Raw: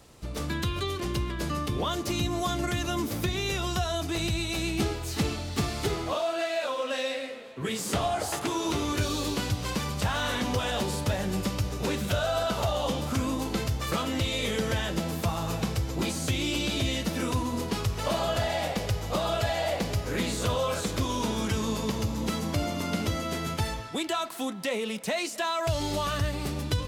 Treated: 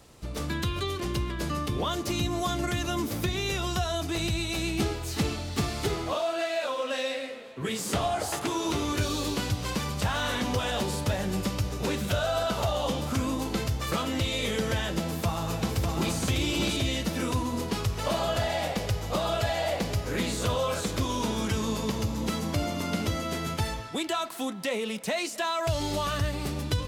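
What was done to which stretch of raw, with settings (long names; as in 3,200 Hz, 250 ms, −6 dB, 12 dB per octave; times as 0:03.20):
0:15.04–0:16.16: delay throw 600 ms, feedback 15%, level −3.5 dB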